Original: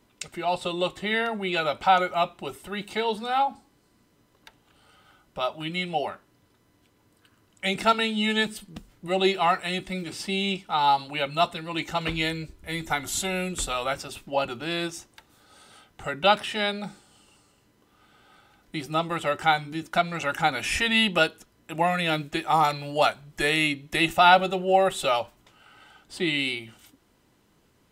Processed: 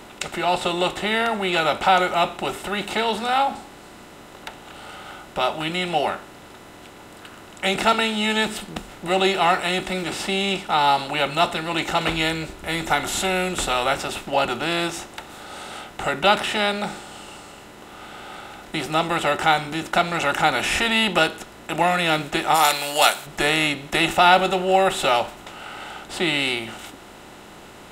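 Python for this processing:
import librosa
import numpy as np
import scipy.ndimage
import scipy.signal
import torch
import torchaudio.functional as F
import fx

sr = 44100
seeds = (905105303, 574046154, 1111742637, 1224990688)

y = fx.bin_compress(x, sr, power=0.6)
y = fx.riaa(y, sr, side='recording', at=(22.54, 23.25), fade=0.02)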